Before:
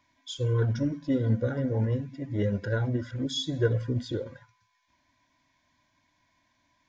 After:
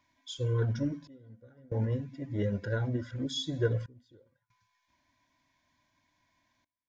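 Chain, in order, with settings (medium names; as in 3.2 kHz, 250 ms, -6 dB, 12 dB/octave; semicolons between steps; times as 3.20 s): trance gate "xxxxx...xxxxx" 70 bpm -24 dB; trim -3.5 dB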